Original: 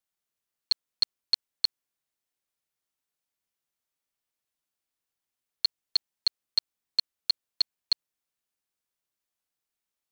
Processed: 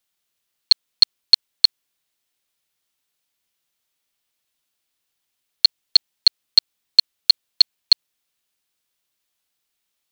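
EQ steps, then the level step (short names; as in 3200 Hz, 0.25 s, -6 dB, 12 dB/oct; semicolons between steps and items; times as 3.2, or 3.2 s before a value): bell 3400 Hz +6 dB 1.4 oct; high shelf 8200 Hz +4 dB; +7.0 dB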